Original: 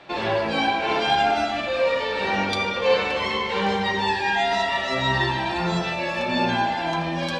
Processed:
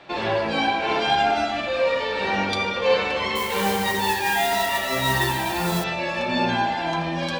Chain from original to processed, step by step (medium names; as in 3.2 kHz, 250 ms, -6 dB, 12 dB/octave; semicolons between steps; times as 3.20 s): 3.35–5.84 s: modulation noise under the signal 11 dB